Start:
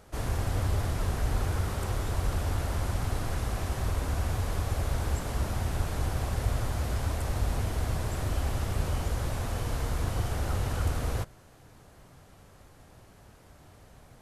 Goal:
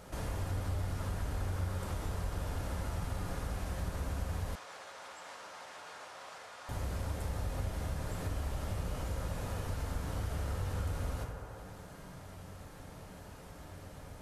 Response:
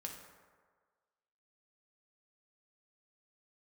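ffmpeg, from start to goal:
-filter_complex "[1:a]atrim=start_sample=2205[link_01];[0:a][link_01]afir=irnorm=-1:irlink=0,acompressor=threshold=-51dB:ratio=2,asettb=1/sr,asplit=3[link_02][link_03][link_04];[link_02]atrim=end=4.554[link_05];[link_03]atrim=start=4.55:end=6.69,asetpts=PTS-STARTPTS,afade=type=in:duration=0.004:curve=qsin,afade=type=out:start_time=2.136:duration=0.004:curve=qsin,highpass=780,lowpass=6700[link_06];[link_04]atrim=start=6.686[link_07];[link_05][link_06]acrossfade=duration=0.004:curve1=hsin:curve2=qsin[link_08];[link_08][link_07]acrossfade=duration=0.004:curve1=qsin:curve2=hsin,volume=7.5dB"

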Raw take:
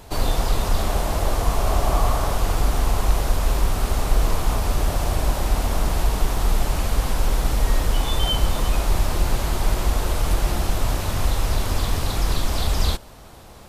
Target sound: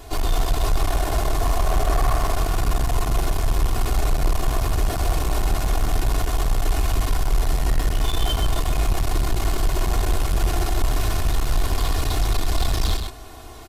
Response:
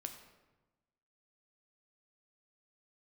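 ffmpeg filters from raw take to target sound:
-filter_complex "[0:a]aecho=1:1:2.8:0.93,asoftclip=type=tanh:threshold=-16.5dB,asplit=2[link_01][link_02];[link_02]aecho=0:1:129:0.501[link_03];[link_01][link_03]amix=inputs=2:normalize=0"

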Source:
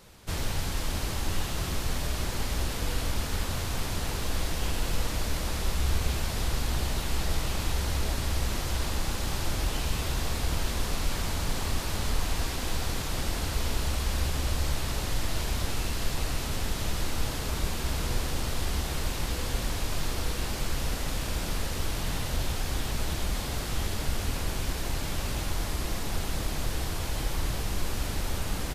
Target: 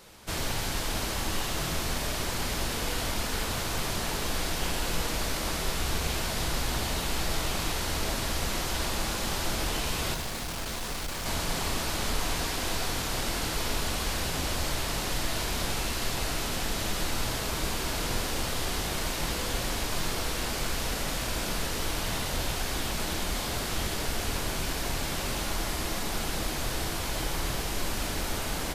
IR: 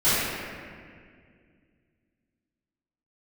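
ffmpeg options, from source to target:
-filter_complex "[0:a]lowshelf=frequency=150:gain=-9.5,asettb=1/sr,asplit=3[link_01][link_02][link_03];[link_01]atrim=end=10.144[link_04];[link_02]atrim=start=10.14:end=11.26,asetpts=PTS-STARTPTS,afade=type=in:duration=0.004:curve=qsin,afade=type=out:start_time=1.116:duration=0.004:curve=qsin,volume=35.5dB,asoftclip=hard,volume=-35.5dB[link_05];[link_03]atrim=start=11.256[link_06];[link_04][link_05]acrossfade=duration=0.004:curve1=hsin:curve2=qsin[link_07];[link_07][link_06]acrossfade=duration=0.004:curve1=qsin:curve2=hsin,asplit=2[link_08][link_09];[1:a]atrim=start_sample=2205,atrim=end_sample=6615[link_10];[link_09][link_10]afir=irnorm=-1:irlink=0,volume=-23.5dB[link_11];[link_08][link_11]amix=inputs=2:normalize=0,volume=2.5dB"

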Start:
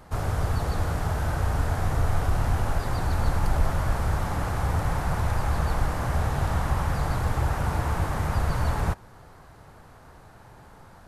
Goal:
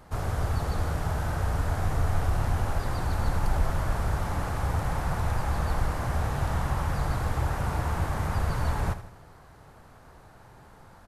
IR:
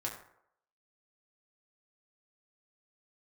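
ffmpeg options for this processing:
-af "aecho=1:1:80|160|240|320|400:0.237|0.109|0.0502|0.0231|0.0106,volume=-2.5dB"

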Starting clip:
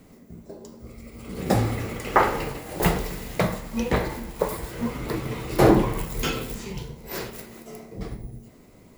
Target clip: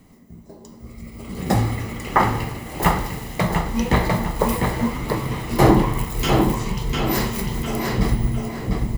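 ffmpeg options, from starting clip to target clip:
ffmpeg -i in.wav -filter_complex "[0:a]aecho=1:1:1:0.38,asplit=2[link_01][link_02];[link_02]adelay=700,lowpass=frequency=3700:poles=1,volume=-4.5dB,asplit=2[link_03][link_04];[link_04]adelay=700,lowpass=frequency=3700:poles=1,volume=0.29,asplit=2[link_05][link_06];[link_06]adelay=700,lowpass=frequency=3700:poles=1,volume=0.29,asplit=2[link_07][link_08];[link_08]adelay=700,lowpass=frequency=3700:poles=1,volume=0.29[link_09];[link_01][link_03][link_05][link_07][link_09]amix=inputs=5:normalize=0,dynaudnorm=framelen=210:gausssize=9:maxgain=16dB,volume=-1dB" out.wav

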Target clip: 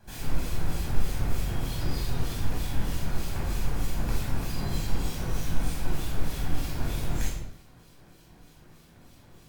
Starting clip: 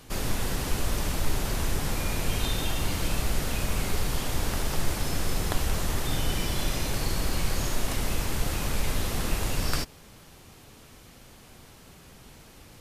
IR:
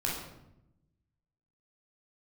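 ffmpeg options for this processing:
-filter_complex "[0:a]acrossover=split=1500[link_01][link_02];[link_01]aeval=exprs='val(0)*(1-0.7/2+0.7/2*cos(2*PI*2.4*n/s))':channel_layout=same[link_03];[link_02]aeval=exprs='val(0)*(1-0.7/2-0.7/2*cos(2*PI*2.4*n/s))':channel_layout=same[link_04];[link_03][link_04]amix=inputs=2:normalize=0,asetrate=59535,aresample=44100[link_05];[1:a]atrim=start_sample=2205,afade=type=out:start_time=0.42:duration=0.01,atrim=end_sample=18963[link_06];[link_05][link_06]afir=irnorm=-1:irlink=0,volume=-8.5dB"

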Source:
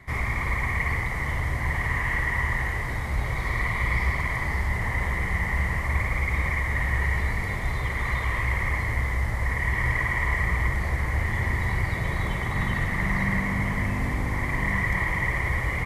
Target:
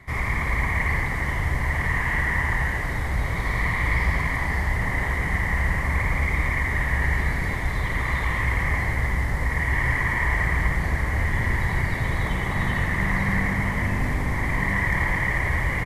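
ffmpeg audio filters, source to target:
ffmpeg -i in.wav -filter_complex "[0:a]asplit=6[link_01][link_02][link_03][link_04][link_05][link_06];[link_02]adelay=84,afreqshift=-110,volume=-5.5dB[link_07];[link_03]adelay=168,afreqshift=-220,volume=-13.2dB[link_08];[link_04]adelay=252,afreqshift=-330,volume=-21dB[link_09];[link_05]adelay=336,afreqshift=-440,volume=-28.7dB[link_10];[link_06]adelay=420,afreqshift=-550,volume=-36.5dB[link_11];[link_01][link_07][link_08][link_09][link_10][link_11]amix=inputs=6:normalize=0,volume=1dB" out.wav

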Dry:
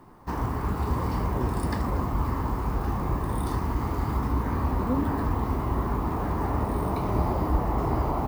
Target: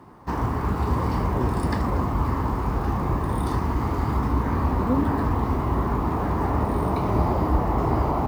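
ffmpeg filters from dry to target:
ffmpeg -i in.wav -af "highpass=47,highshelf=frequency=10000:gain=-9.5,volume=4dB" out.wav

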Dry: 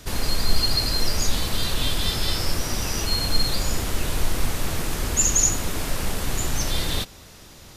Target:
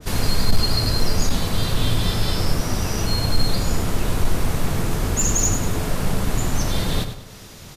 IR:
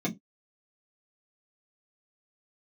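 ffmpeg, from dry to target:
-filter_complex "[0:a]asoftclip=type=hard:threshold=-11.5dB,aecho=1:1:100|200|300|400:0.316|0.117|0.0433|0.016,asplit=2[link_01][link_02];[1:a]atrim=start_sample=2205,asetrate=26901,aresample=44100[link_03];[link_02][link_03]afir=irnorm=-1:irlink=0,volume=-25.5dB[link_04];[link_01][link_04]amix=inputs=2:normalize=0,adynamicequalizer=threshold=0.00447:dfrequency=1600:dqfactor=0.7:tfrequency=1600:tqfactor=0.7:attack=5:release=100:ratio=0.375:range=3:mode=cutabove:tftype=highshelf,volume=3.5dB"

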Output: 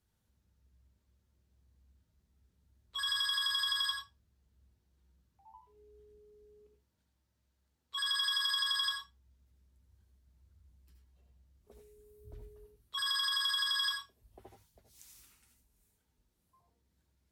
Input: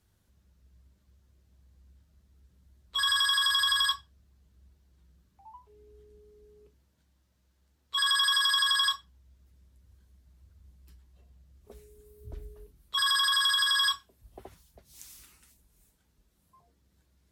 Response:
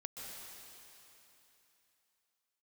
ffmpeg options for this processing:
-filter_complex "[1:a]atrim=start_sample=2205,afade=type=out:start_time=0.23:duration=0.01,atrim=end_sample=10584,asetrate=79380,aresample=44100[link_01];[0:a][link_01]afir=irnorm=-1:irlink=0,volume=2dB"

